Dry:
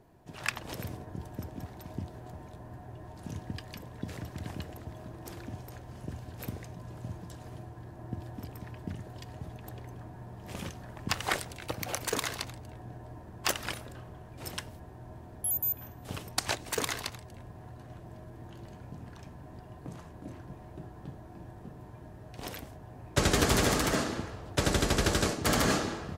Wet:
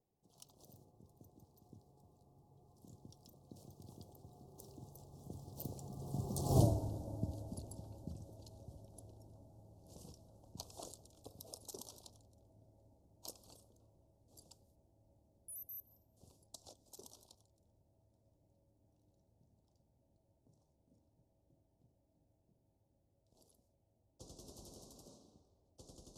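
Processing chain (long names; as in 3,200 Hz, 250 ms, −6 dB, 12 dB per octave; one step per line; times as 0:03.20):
source passing by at 0:06.60, 44 m/s, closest 2.8 metres
Chebyshev band-stop filter 710–4,800 Hz, order 2
high-shelf EQ 4,600 Hz +6 dB
level +18 dB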